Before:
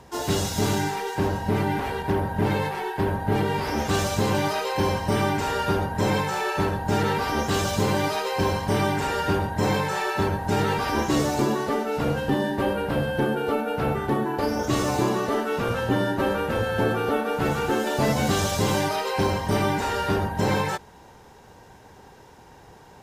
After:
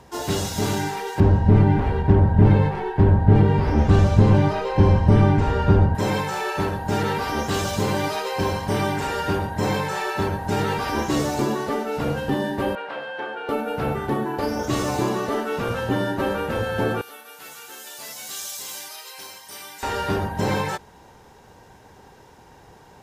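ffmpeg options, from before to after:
-filter_complex "[0:a]asettb=1/sr,asplit=3[a][b][c];[a]atrim=end=1.204[d];[b]atrim=start=1.2:end=5.95,asetpts=PTS-STARTPTS,afade=t=in:d=0.004:c=qsin,afade=t=out:st=4.746:d=0.004:c=qsin,aemphasis=mode=reproduction:type=riaa[e];[c]atrim=start=5.946[f];[d][e]acrossfade=d=0.004:c1=hsin:c2=qsin[g];[g][f]acrossfade=d=0.004:c1=qsin:c2=hsin,asettb=1/sr,asplit=3[h][i][j];[h]atrim=end=12.754[k];[i]atrim=start=12.75:end=13.49,asetpts=PTS-STARTPTS,afade=t=in:d=0.004:c=qsin,afade=t=out:st=0.736:d=0.004:c=qsin,highpass=720,lowpass=3.4k[l];[j]atrim=start=13.486[m];[k][l]acrossfade=d=0.004:c1=hsin:c2=qsin[n];[n][m]acrossfade=d=0.004:c1=qsin:c2=hsin,asettb=1/sr,asplit=3[o][p][q];[o]atrim=end=17.014[r];[p]atrim=start=17.01:end=19.83,asetpts=PTS-STARTPTS,afade=t=in:d=0.004:c=qsin,afade=t=out:st=2.816:d=0.004:c=qsin,aderivative[s];[q]atrim=start=19.826[t];[r][s]acrossfade=d=0.004:c1=hsin:c2=qsin[u];[u][t]acrossfade=d=0.004:c1=qsin:c2=hsin"

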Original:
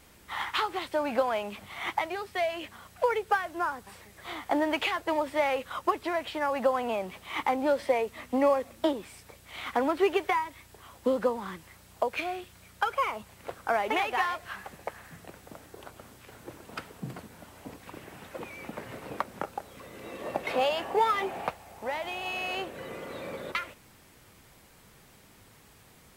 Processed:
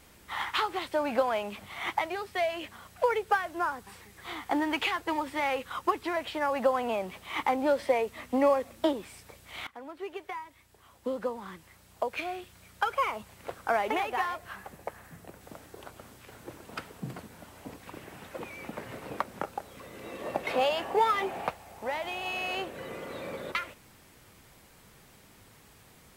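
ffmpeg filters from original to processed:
-filter_complex "[0:a]asettb=1/sr,asplit=3[a][b][c];[a]atrim=end=3.804[d];[b]atrim=start=3.8:end=6.17,asetpts=PTS-STARTPTS,afade=t=in:d=0.004:c=qsin,afade=t=out:st=2.366:d=0.004:c=qsin,equalizer=f=610:t=o:w=0.2:g=-11.5[e];[c]atrim=start=6.166[f];[d][e]acrossfade=d=0.004:c1=hsin:c2=qsin[g];[g][f]acrossfade=d=0.004:c1=qsin:c2=hsin,asettb=1/sr,asplit=3[h][i][j];[h]atrim=end=13.914[k];[i]atrim=start=13.91:end=15.41,asetpts=PTS-STARTPTS,afade=t=in:d=0.004:c=qsin,afade=t=out:st=1.496:d=0.004:c=qsin,equalizer=f=3.2k:t=o:w=2.8:g=-5[l];[j]atrim=start=15.406[m];[k][l]acrossfade=d=0.004:c1=hsin:c2=qsin[n];[n][m]acrossfade=d=0.004:c1=qsin:c2=hsin,asplit=2[o][p];[o]atrim=end=9.67,asetpts=PTS-STARTPTS,afade=t=out:st=9.666:d=0.004:c=hsin:silence=0.0944061[q];[p]atrim=start=9.67,asetpts=PTS-STARTPTS,afade=t=in:d=3.37:silence=0.0944061[r];[q][r]concat=n=2:v=0:a=1"

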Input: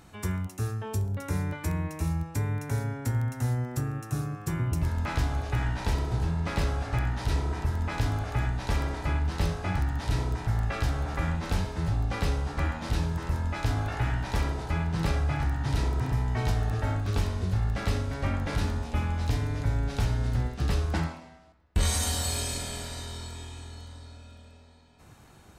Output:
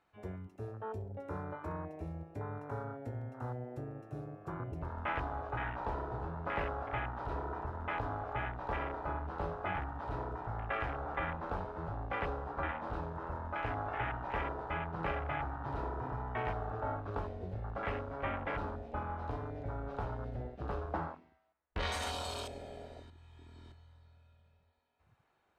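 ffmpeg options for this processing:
-filter_complex "[0:a]asplit=3[a][b][c];[a]atrim=end=23.102[d];[b]atrim=start=23.098:end=23.722,asetpts=PTS-STARTPTS,areverse[e];[c]atrim=start=23.718[f];[d][e]acrossfade=d=0.004:c1=hsin:c2=hsin[g];[g][f]acrossfade=d=0.004:c1=hsin:c2=hsin,afwtdn=0.0158,acrossover=split=390 3400:gain=0.178 1 0.126[h][i][j];[h][i][j]amix=inputs=3:normalize=0"

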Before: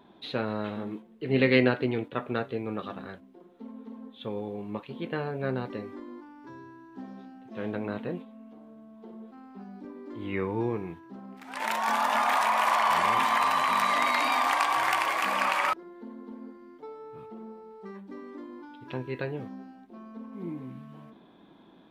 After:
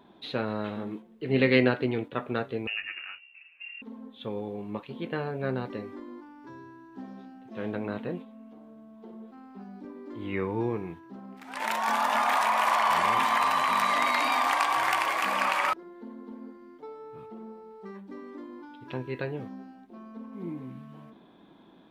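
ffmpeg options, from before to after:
-filter_complex "[0:a]asettb=1/sr,asplit=3[a][b][c];[a]atrim=end=2.674[d];[b]atrim=start=2.67:end=3.82,asetpts=PTS-STARTPTS,afade=t=in:d=0.004:c=qsin,afade=t=out:st=1.146:d=0.004:c=qsin,lowpass=f=2.6k:t=q:w=0.5098,lowpass=f=2.6k:t=q:w=0.6013,lowpass=f=2.6k:t=q:w=0.9,lowpass=f=2.6k:t=q:w=2.563,afreqshift=-3000[e];[c]atrim=start=3.816[f];[d][e]acrossfade=d=0.004:c1=hsin:c2=qsin[g];[g][f]acrossfade=d=0.004:c1=qsin:c2=hsin"

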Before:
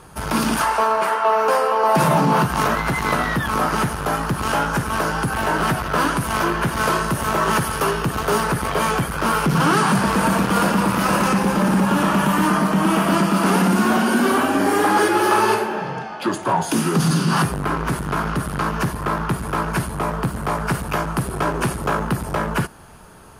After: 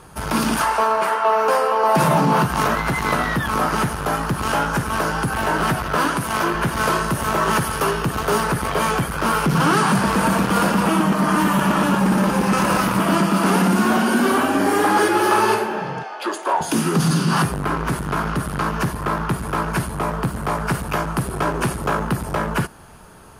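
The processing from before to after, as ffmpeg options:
-filter_complex "[0:a]asettb=1/sr,asplit=3[a][b][c];[a]atrim=end=5.954[d];[b]atrim=start=5.95:end=6.55,asetpts=PTS-STARTPTS,afade=t=in:d=0.004:c=qsin,afade=t=out:st=0.596:d=0.004:c=qsin,highpass=f=120:p=1[e];[c]atrim=start=6.546[f];[d][e]acrossfade=d=0.004:c1=hsin:c2=qsin[g];[g][f]acrossfade=d=0.004:c1=qsin:c2=hsin,asettb=1/sr,asplit=3[h][i][j];[h]atrim=end=16.034[k];[i]atrim=start=16.03:end=16.61,asetpts=PTS-STARTPTS,afade=t=in:d=0.004:c=qsin,afade=t=out:st=0.576:d=0.004:c=qsin,highpass=f=360:w=0.5412,highpass=f=360:w=1.3066[l];[j]atrim=start=16.606[m];[k][l]acrossfade=d=0.004:c1=hsin:c2=qsin[n];[n][m]acrossfade=d=0.004:c1=qsin:c2=hsin,asplit=3[o][p][q];[o]atrim=end=10.862[r];[p]atrim=start=10.858:end=13.002,asetpts=PTS-STARTPTS,areverse[s];[q]atrim=start=12.998[t];[r][s]acrossfade=d=0.004:c1=hsin:c2=hsin[u];[u][t]acrossfade=d=0.004:c1=hsin:c2=hsin"

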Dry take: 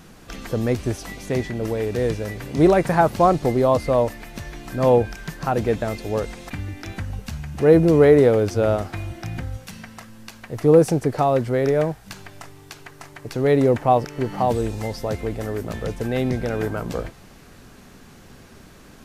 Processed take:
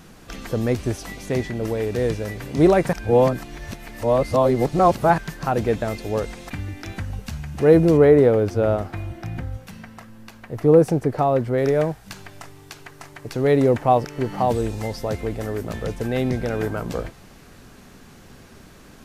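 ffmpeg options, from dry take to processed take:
-filter_complex "[0:a]asettb=1/sr,asplit=3[a][b][c];[a]atrim=end=7.974[d];[b]atrim=start=7.97:end=11.58,asetpts=PTS-STARTPTS,afade=t=in:d=0.004:c=qsin,afade=t=out:st=3.606:d=0.004:c=qsin,equalizer=f=7.1k:t=o:w=2.8:g=-7.5[e];[c]atrim=start=11.576[f];[d][e]acrossfade=d=0.004:c1=hsin:c2=qsin[g];[g][f]acrossfade=d=0.004:c1=qsin:c2=hsin,asplit=3[h][i][j];[h]atrim=end=2.932[k];[i]atrim=start=2.928:end=5.182,asetpts=PTS-STARTPTS,areverse[l];[j]atrim=start=5.178[m];[k][l]acrossfade=d=0.004:c1=hsin:c2=hsin[n];[n][m]acrossfade=d=0.004:c1=hsin:c2=hsin"

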